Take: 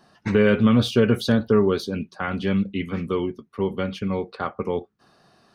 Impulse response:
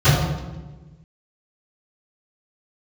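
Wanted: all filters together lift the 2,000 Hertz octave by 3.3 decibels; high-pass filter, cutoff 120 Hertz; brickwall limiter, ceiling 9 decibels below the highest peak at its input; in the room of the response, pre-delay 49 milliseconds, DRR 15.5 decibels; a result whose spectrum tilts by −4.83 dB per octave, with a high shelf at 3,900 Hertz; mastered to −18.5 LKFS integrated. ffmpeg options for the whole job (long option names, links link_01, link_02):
-filter_complex "[0:a]highpass=120,equalizer=frequency=2000:width_type=o:gain=3.5,highshelf=frequency=3900:gain=5,alimiter=limit=-15dB:level=0:latency=1,asplit=2[link_01][link_02];[1:a]atrim=start_sample=2205,adelay=49[link_03];[link_02][link_03]afir=irnorm=-1:irlink=0,volume=-39dB[link_04];[link_01][link_04]amix=inputs=2:normalize=0,volume=7.5dB"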